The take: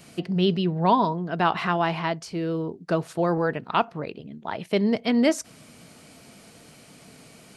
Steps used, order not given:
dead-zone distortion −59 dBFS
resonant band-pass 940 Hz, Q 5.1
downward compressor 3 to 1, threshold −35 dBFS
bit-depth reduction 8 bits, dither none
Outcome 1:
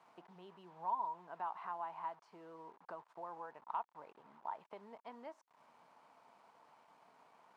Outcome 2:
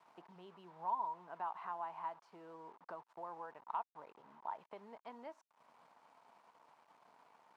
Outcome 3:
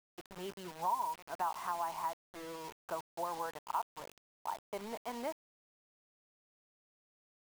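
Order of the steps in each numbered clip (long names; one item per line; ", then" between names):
downward compressor, then bit-depth reduction, then dead-zone distortion, then resonant band-pass
downward compressor, then dead-zone distortion, then bit-depth reduction, then resonant band-pass
dead-zone distortion, then resonant band-pass, then downward compressor, then bit-depth reduction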